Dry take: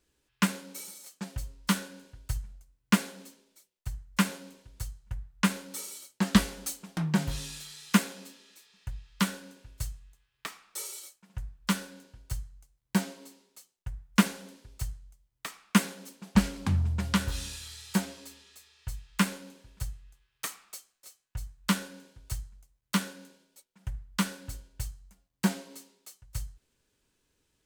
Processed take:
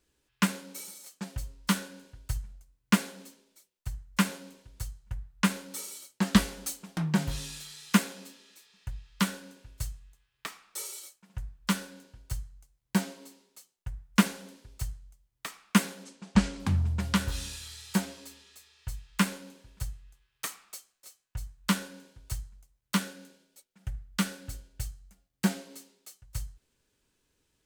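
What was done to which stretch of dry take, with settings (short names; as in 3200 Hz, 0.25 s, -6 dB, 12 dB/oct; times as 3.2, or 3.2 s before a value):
16.04–16.6 LPF 8600 Hz 24 dB/oct
23–26.23 notch 1000 Hz, Q 6.6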